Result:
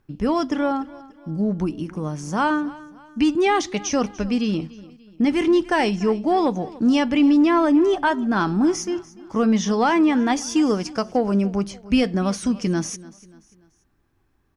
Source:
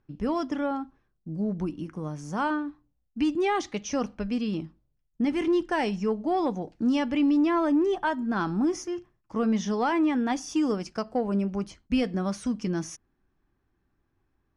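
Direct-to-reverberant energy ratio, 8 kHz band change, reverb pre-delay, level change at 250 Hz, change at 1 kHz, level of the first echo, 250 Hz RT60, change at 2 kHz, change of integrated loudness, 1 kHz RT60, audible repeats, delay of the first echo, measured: no reverb audible, +10.0 dB, no reverb audible, +6.5 dB, +7.0 dB, −20.0 dB, no reverb audible, +7.5 dB, +6.5 dB, no reverb audible, 3, 292 ms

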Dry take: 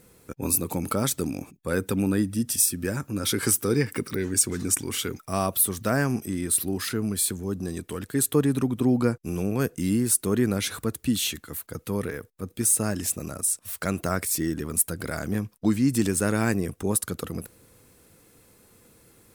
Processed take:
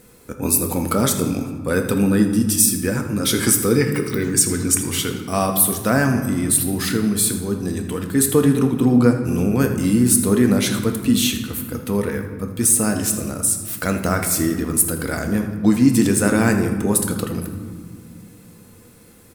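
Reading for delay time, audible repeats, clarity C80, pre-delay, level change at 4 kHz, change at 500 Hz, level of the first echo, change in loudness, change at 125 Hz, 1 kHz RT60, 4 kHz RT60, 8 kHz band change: 81 ms, 1, 8.5 dB, 4 ms, +6.5 dB, +7.0 dB, −13.0 dB, +7.0 dB, +7.0 dB, 1.6 s, 0.90 s, +6.5 dB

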